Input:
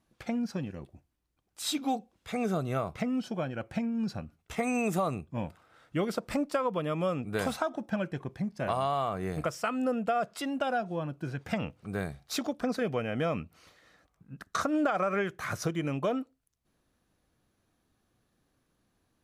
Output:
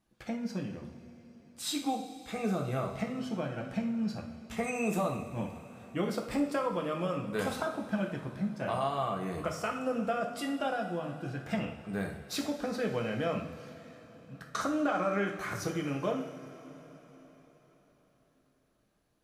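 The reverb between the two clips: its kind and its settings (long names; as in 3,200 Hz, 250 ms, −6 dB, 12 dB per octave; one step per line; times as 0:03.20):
coupled-rooms reverb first 0.54 s, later 4.6 s, from −17 dB, DRR 1 dB
level −4 dB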